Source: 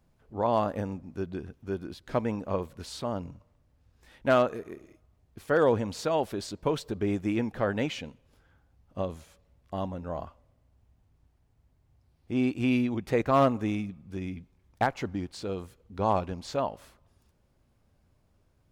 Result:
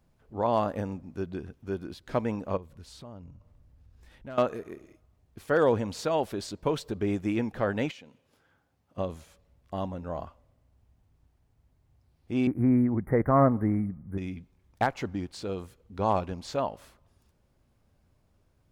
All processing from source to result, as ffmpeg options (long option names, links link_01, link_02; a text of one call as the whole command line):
ffmpeg -i in.wav -filter_complex "[0:a]asettb=1/sr,asplit=3[link_01][link_02][link_03];[link_01]atrim=end=2.574[link_04];[link_02]atrim=start=2.57:end=4.38,asetpts=PTS-STARTPTS,afade=type=in:duration=0.004:curve=qsin,afade=type=out:start_time=1.806:duration=0.004:curve=qsin,lowshelf=frequency=160:gain=11,acompressor=threshold=-53dB:ratio=2:attack=3.2:release=140:knee=1:detection=peak[link_05];[link_03]atrim=start=4.376[link_06];[link_04][link_05]acrossfade=duration=0.004:curve1=hsin:curve2=qsin[link_07];[link_07][link_06]acrossfade=duration=0.004:curve1=qsin:curve2=hsin,asettb=1/sr,asplit=3[link_08][link_09][link_10];[link_08]atrim=end=7.914[link_11];[link_09]atrim=start=7.91:end=8.98,asetpts=PTS-STARTPTS,afade=type=in:duration=0.004:curve=qsin,afade=type=out:start_time=1.066:duration=0.004:curve=qsin,highpass=89,lowshelf=frequency=120:gain=-11,acompressor=threshold=-50dB:ratio=2.5:attack=3.2:release=140:knee=1:detection=peak[link_12];[link_10]atrim=start=8.976[link_13];[link_11][link_12]acrossfade=duration=0.004:curve1=hsin:curve2=qsin[link_14];[link_14][link_13]acrossfade=duration=0.004:curve1=qsin:curve2=hsin,asettb=1/sr,asplit=3[link_15][link_16][link_17];[link_15]atrim=end=12.474[link_18];[link_16]atrim=start=12.47:end=14.18,asetpts=PTS-STARTPTS,afade=type=in:duration=0.004:curve=qsin,afade=type=out:start_time=1.706:duration=0.004:curve=qsin,acrossover=split=3600[link_19][link_20];[link_20]acompressor=threshold=-53dB:ratio=4:attack=1:release=60[link_21];[link_19][link_21]amix=inputs=2:normalize=0,asuperstop=centerf=4600:order=20:qfactor=0.64,bass=frequency=250:gain=6,treble=frequency=4000:gain=2[link_22];[link_17]atrim=start=14.176[link_23];[link_18][link_22]acrossfade=duration=0.004:curve1=hsin:curve2=qsin[link_24];[link_24][link_23]acrossfade=duration=0.004:curve1=qsin:curve2=hsin" out.wav